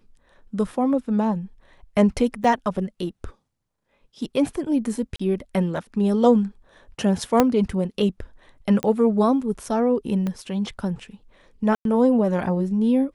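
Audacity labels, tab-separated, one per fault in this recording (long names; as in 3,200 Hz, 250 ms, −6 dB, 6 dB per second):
2.440000	2.440000	drop-out 4.5 ms
5.160000	5.200000	drop-out 35 ms
7.400000	7.400000	click −3 dBFS
8.830000	8.830000	click −11 dBFS
10.270000	10.270000	click −16 dBFS
11.750000	11.850000	drop-out 102 ms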